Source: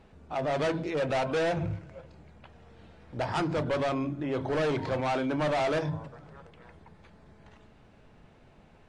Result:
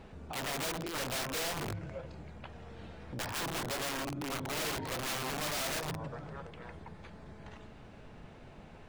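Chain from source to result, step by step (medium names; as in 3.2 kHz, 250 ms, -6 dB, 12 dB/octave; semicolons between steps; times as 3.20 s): integer overflow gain 26 dB; peak limiter -37.5 dBFS, peak gain reduction 11.5 dB; trim +5 dB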